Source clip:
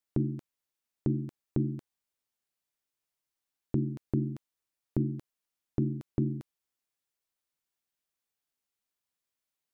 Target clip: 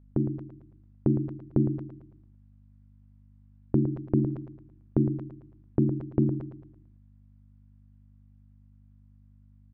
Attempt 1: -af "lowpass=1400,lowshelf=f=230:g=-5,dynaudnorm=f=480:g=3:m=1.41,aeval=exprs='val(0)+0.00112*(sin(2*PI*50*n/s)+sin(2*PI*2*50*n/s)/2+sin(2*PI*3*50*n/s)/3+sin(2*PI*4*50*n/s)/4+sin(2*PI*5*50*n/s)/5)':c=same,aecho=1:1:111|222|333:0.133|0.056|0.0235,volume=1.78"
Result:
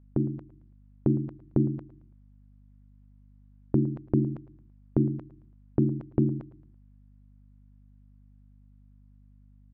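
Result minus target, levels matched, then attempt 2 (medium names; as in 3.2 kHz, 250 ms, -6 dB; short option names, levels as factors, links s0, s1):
echo-to-direct -9 dB
-af "lowpass=1400,lowshelf=f=230:g=-5,dynaudnorm=f=480:g=3:m=1.41,aeval=exprs='val(0)+0.00112*(sin(2*PI*50*n/s)+sin(2*PI*2*50*n/s)/2+sin(2*PI*3*50*n/s)/3+sin(2*PI*4*50*n/s)/4+sin(2*PI*5*50*n/s)/5)':c=same,aecho=1:1:111|222|333|444|555:0.376|0.158|0.0663|0.0278|0.0117,volume=1.78"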